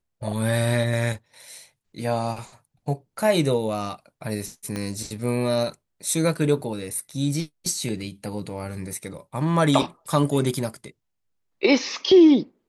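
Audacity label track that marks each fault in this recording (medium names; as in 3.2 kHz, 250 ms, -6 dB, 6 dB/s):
4.760000	4.760000	pop -16 dBFS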